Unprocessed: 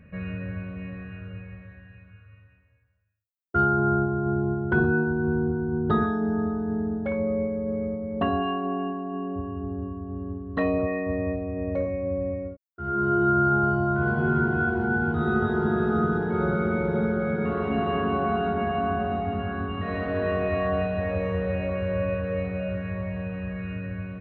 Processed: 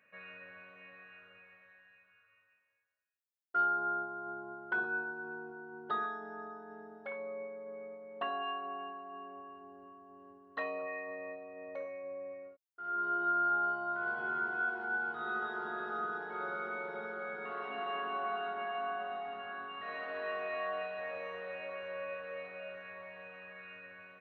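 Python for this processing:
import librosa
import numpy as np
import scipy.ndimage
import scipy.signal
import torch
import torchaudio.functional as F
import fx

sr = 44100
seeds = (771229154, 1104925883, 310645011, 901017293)

y = scipy.signal.sosfilt(scipy.signal.butter(2, 820.0, 'highpass', fs=sr, output='sos'), x)
y = F.gain(torch.from_numpy(y), -6.0).numpy()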